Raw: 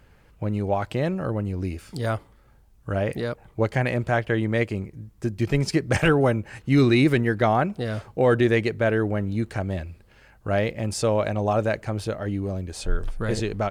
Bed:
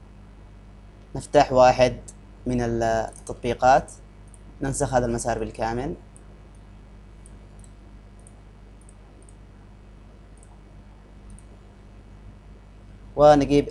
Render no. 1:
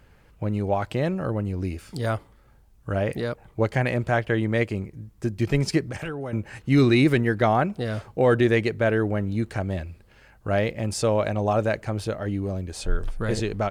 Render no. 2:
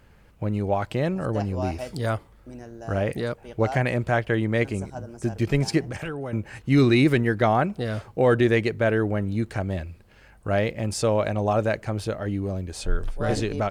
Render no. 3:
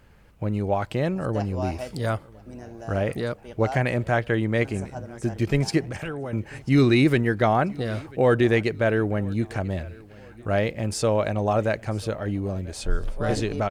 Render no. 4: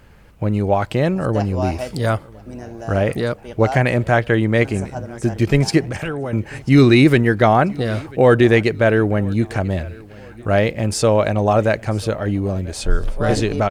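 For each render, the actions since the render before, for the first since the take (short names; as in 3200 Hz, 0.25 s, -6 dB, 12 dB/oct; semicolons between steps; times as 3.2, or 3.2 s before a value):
5.82–6.33 compressor 4:1, threshold -31 dBFS
add bed -16.5 dB
feedback echo 0.991 s, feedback 44%, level -23.5 dB
gain +7 dB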